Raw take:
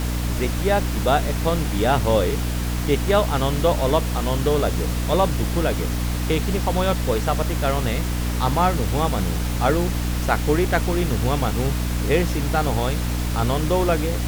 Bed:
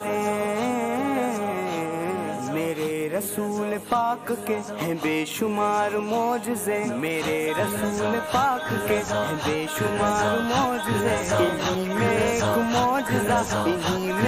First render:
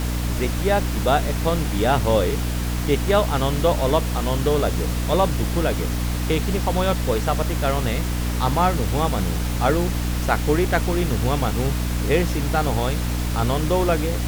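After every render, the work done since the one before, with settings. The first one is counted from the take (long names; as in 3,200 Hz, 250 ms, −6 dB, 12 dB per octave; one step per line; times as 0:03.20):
no processing that can be heard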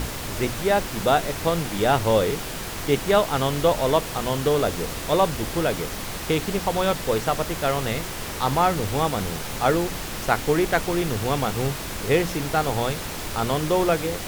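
mains-hum notches 60/120/180/240/300 Hz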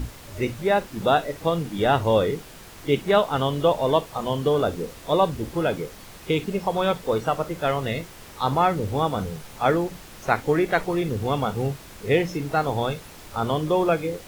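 noise reduction from a noise print 12 dB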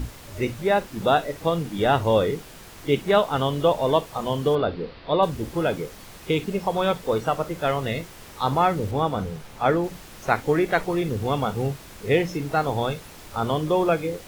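0:04.55–0:05.23: elliptic low-pass filter 4,600 Hz
0:08.91–0:09.84: parametric band 15,000 Hz −6 dB 2 octaves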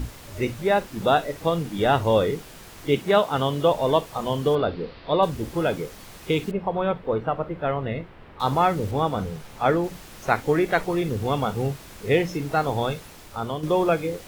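0:02.94–0:03.71: high-pass filter 75 Hz
0:06.51–0:08.40: high-frequency loss of the air 470 metres
0:12.97–0:13.63: fade out, to −7 dB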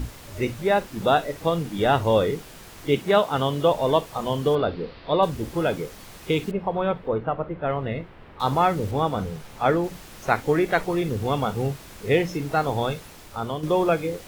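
0:07.08–0:07.70: high-frequency loss of the air 200 metres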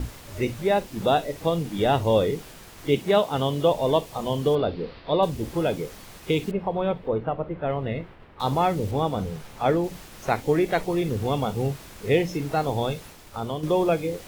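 downward expander −41 dBFS
dynamic equaliser 1,400 Hz, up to −7 dB, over −39 dBFS, Q 1.5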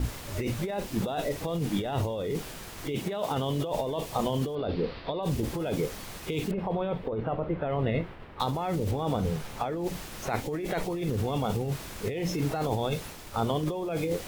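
brickwall limiter −16 dBFS, peak gain reduction 8 dB
compressor whose output falls as the input rises −29 dBFS, ratio −1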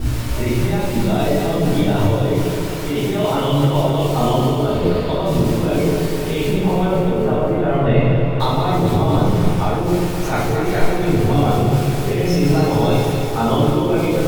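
feedback delay that plays each chunk backwards 129 ms, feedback 80%, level −7 dB
rectangular room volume 250 cubic metres, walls mixed, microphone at 3.5 metres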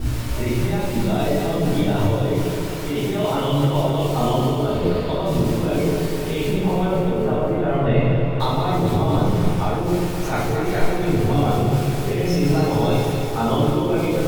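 level −3 dB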